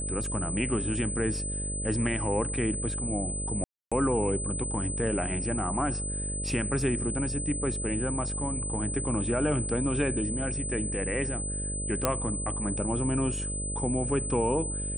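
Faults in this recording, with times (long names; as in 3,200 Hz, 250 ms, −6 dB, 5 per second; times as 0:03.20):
mains buzz 50 Hz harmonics 12 −35 dBFS
whistle 8,100 Hz −33 dBFS
0:03.64–0:03.92: drop-out 276 ms
0:12.05: click −8 dBFS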